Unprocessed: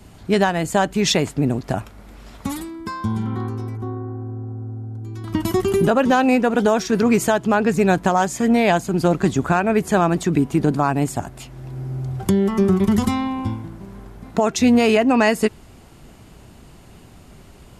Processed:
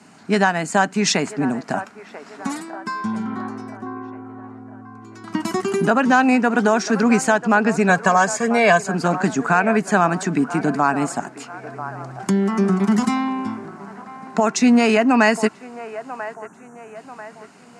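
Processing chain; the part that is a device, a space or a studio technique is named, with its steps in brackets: 7.89–8.87 comb 1.8 ms, depth 88%; 16.34–16.96 spectral delete 1800–5600 Hz; television speaker (speaker cabinet 190–8800 Hz, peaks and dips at 350 Hz -8 dB, 530 Hz -8 dB, 1500 Hz +4 dB, 3400 Hz -9 dB); band-limited delay 0.991 s, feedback 45%, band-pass 870 Hz, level -12 dB; gain +2.5 dB

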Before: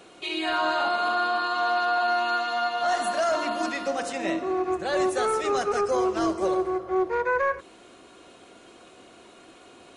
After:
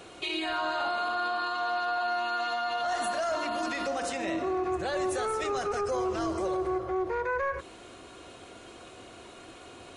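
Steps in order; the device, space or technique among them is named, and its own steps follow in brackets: car stereo with a boomy subwoofer (resonant low shelf 140 Hz +6 dB, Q 1.5; limiter -25.5 dBFS, peak gain reduction 9 dB); gain +2.5 dB

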